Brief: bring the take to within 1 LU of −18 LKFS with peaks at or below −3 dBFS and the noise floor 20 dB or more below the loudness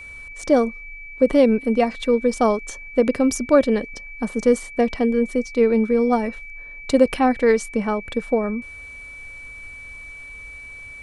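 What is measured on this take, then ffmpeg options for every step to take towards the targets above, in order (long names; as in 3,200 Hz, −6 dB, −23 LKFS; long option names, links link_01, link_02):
interfering tone 2,300 Hz; level of the tone −36 dBFS; integrated loudness −20.0 LKFS; sample peak −3.0 dBFS; target loudness −18.0 LKFS
→ -af "bandreject=frequency=2300:width=30"
-af "volume=2dB,alimiter=limit=-3dB:level=0:latency=1"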